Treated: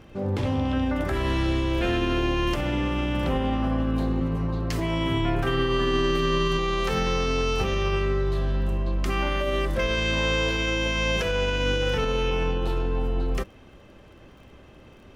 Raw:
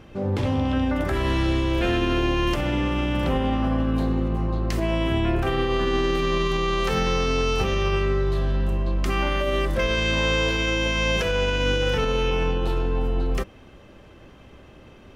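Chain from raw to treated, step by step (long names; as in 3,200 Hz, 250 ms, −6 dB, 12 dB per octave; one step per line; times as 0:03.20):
0:04.20–0:06.59: comb filter 7 ms, depth 68%
surface crackle 28 per second −46 dBFS
level −2 dB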